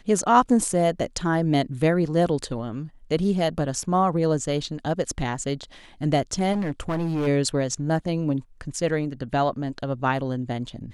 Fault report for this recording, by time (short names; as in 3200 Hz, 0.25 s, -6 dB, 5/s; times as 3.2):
6.52–7.28 clipped -22 dBFS